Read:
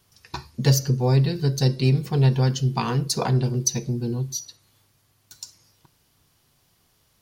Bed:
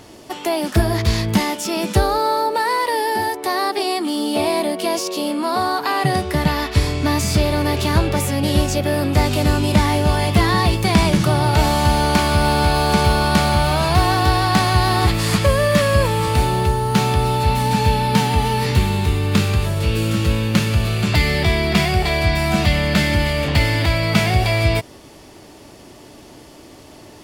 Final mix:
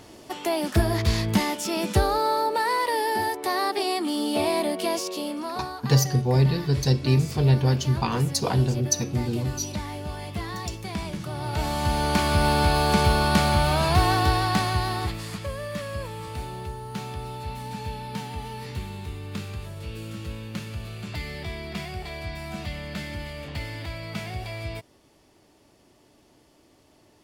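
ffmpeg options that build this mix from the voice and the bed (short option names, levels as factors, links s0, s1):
-filter_complex "[0:a]adelay=5250,volume=0.891[s0];[1:a]volume=2.37,afade=t=out:st=4.83:d=0.95:silence=0.251189,afade=t=in:st=11.29:d=1.16:silence=0.237137,afade=t=out:st=14.13:d=1.18:silence=0.237137[s1];[s0][s1]amix=inputs=2:normalize=0"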